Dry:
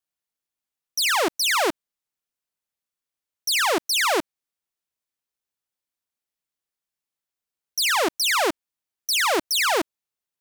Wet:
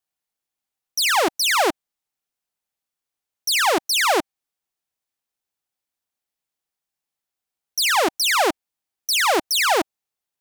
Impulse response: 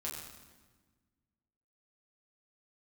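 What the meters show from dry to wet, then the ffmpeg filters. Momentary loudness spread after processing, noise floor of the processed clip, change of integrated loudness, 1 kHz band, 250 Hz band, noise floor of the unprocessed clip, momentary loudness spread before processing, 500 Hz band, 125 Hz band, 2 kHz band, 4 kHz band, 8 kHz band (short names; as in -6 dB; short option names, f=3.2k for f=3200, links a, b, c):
11 LU, under -85 dBFS, +2.5 dB, +4.0 dB, +2.0 dB, under -85 dBFS, 10 LU, +2.5 dB, n/a, +2.0 dB, +2.0 dB, +2.0 dB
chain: -af "equalizer=f=780:t=o:w=0.24:g=5.5,volume=2dB"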